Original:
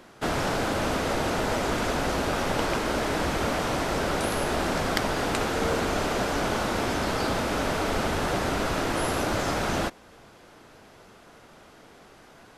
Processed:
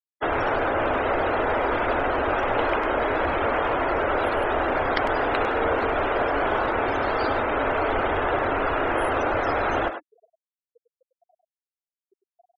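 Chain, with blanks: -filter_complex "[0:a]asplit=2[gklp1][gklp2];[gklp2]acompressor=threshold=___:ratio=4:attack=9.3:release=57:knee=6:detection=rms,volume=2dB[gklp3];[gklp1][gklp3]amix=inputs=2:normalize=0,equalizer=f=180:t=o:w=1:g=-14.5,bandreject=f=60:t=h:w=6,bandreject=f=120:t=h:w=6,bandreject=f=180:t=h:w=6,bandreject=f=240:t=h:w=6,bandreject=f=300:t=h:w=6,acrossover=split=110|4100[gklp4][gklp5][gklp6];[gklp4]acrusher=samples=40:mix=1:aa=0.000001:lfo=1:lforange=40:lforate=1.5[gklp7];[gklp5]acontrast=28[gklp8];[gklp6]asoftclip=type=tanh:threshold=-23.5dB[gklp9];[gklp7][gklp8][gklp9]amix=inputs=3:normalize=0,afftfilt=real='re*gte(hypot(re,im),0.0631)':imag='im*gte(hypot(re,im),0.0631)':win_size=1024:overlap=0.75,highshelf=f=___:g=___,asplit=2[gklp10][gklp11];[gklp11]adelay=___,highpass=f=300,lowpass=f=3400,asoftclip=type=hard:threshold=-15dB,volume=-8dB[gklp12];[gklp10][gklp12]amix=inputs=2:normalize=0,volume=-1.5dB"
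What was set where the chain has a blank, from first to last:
-41dB, 3200, -5, 100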